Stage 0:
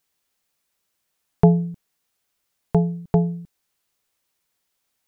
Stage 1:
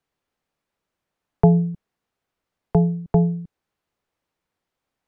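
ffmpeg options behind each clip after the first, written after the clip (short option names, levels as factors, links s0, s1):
-filter_complex "[0:a]lowpass=f=1000:p=1,acrossover=split=160|440[s0][s1][s2];[s1]alimiter=limit=0.0891:level=0:latency=1:release=12[s3];[s0][s3][s2]amix=inputs=3:normalize=0,volume=1.5"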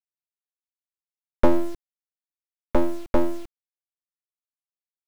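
-af "aeval=exprs='abs(val(0))':c=same,acrusher=bits=5:dc=4:mix=0:aa=0.000001"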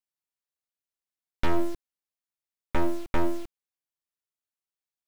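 -af "volume=6.68,asoftclip=hard,volume=0.15"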